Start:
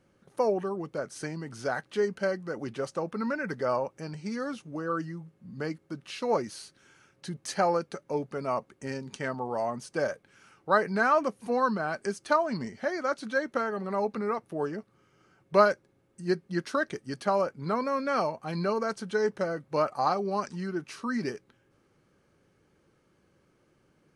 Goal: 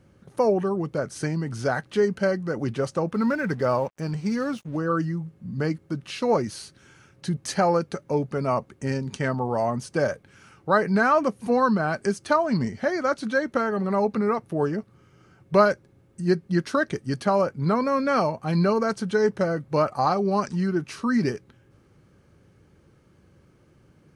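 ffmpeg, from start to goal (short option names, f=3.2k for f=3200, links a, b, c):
-filter_complex "[0:a]equalizer=f=79:t=o:w=2.5:g=11,asplit=2[a][b];[b]alimiter=limit=-18.5dB:level=0:latency=1:release=204,volume=-2.5dB[c];[a][c]amix=inputs=2:normalize=0,asettb=1/sr,asplit=3[d][e][f];[d]atrim=end=3.134[g];[e]atrim=start=3.13:end=4.77,asetpts=PTS-STARTPTS,afade=t=in:d=0.004:c=qsin,afade=t=out:st=1.636:d=0.004:c=qsin,aeval=exprs='sgn(val(0))*max(abs(val(0))-0.00335,0)':c=same[h];[f]atrim=start=4.766[i];[g][h]acrossfade=d=0.004:c1=hsin:c2=qsin[j];[j][i]acrossfade=d=0.004:c1=qsin:c2=hsin"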